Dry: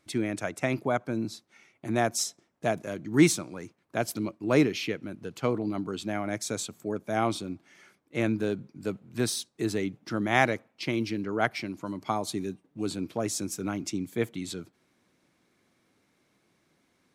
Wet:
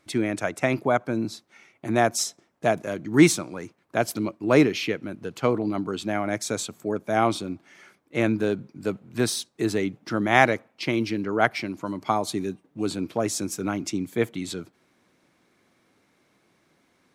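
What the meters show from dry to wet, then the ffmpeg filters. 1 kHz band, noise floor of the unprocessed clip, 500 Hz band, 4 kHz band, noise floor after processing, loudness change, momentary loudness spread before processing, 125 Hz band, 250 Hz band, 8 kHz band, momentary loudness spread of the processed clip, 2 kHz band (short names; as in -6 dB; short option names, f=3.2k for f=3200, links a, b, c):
+6.0 dB, -71 dBFS, +5.0 dB, +3.5 dB, -67 dBFS, +4.5 dB, 12 LU, +3.0 dB, +4.0 dB, +3.0 dB, 12 LU, +5.0 dB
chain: -af "equalizer=f=950:w=0.35:g=3.5,volume=2.5dB"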